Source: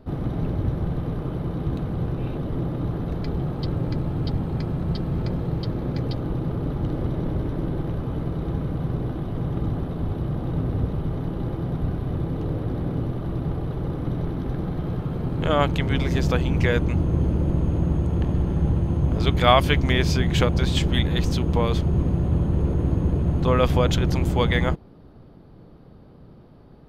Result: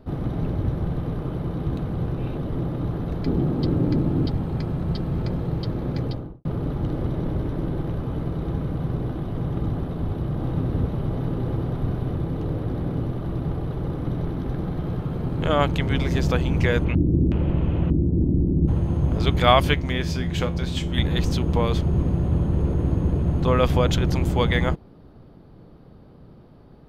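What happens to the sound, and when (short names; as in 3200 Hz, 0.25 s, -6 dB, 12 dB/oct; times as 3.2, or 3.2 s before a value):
3.26–4.26 bell 270 Hz +9.5 dB 1.3 oct
6.02–6.45 studio fade out
9.65–12.12 echo 0.745 s -5 dB
16.84–18.67 LFO low-pass square 1.8 Hz -> 0.3 Hz 300–2800 Hz
19.74–20.98 resonator 84 Hz, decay 0.31 s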